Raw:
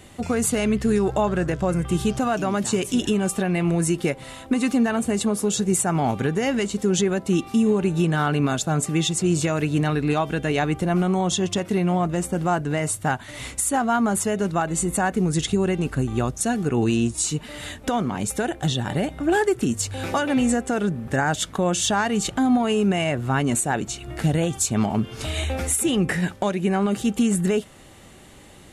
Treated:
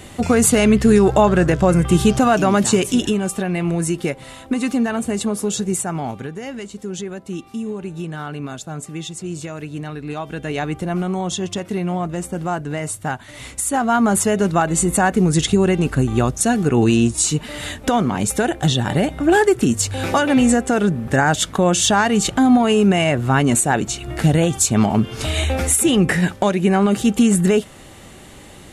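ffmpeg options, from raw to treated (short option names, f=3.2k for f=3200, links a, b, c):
-af "volume=21.5dB,afade=t=out:st=2.61:d=0.61:silence=0.446684,afade=t=out:st=5.55:d=0.76:silence=0.375837,afade=t=in:st=10.03:d=0.59:silence=0.473151,afade=t=in:st=13.48:d=0.67:silence=0.446684"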